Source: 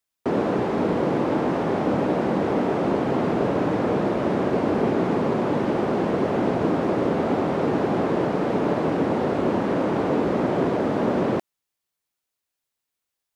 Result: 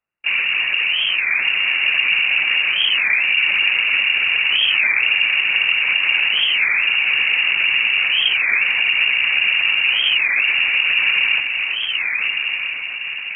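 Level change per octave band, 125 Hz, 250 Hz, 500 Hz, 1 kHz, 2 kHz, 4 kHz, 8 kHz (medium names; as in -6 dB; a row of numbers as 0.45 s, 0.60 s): under -20 dB, under -25 dB, under -20 dB, -8.0 dB, +22.5 dB, +27.0 dB, no reading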